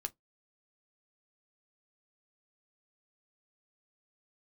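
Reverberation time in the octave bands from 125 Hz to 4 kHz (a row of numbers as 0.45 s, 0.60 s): 0.15 s, 0.15 s, 0.15 s, 0.15 s, 0.10 s, 0.10 s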